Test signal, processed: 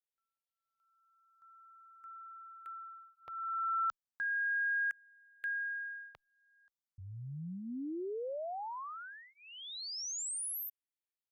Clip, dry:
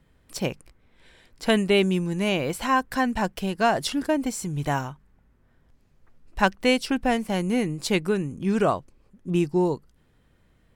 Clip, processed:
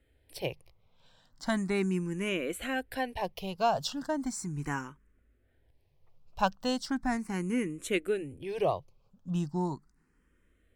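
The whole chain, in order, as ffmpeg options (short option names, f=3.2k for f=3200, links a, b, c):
-filter_complex "[0:a]equalizer=f=210:w=6.9:g=-4,asplit=2[a][b];[b]afreqshift=0.37[c];[a][c]amix=inputs=2:normalize=1,volume=-4.5dB"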